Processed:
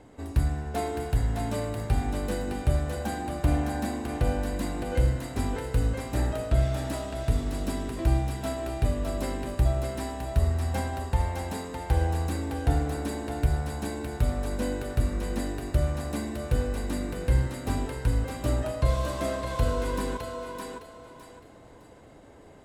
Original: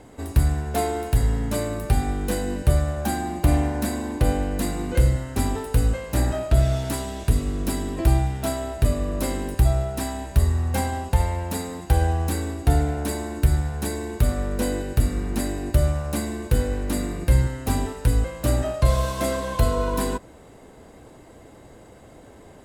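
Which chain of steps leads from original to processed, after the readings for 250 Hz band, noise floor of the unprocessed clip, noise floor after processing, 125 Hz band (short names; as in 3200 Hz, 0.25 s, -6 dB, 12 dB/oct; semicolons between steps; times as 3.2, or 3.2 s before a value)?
-5.0 dB, -47 dBFS, -51 dBFS, -5.5 dB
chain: high shelf 8700 Hz -10 dB; on a send: thinning echo 0.611 s, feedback 30%, high-pass 420 Hz, level -3.5 dB; on the sum: FDN reverb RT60 1.7 s, high-frequency decay 0.3×, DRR 16 dB; gain -5.5 dB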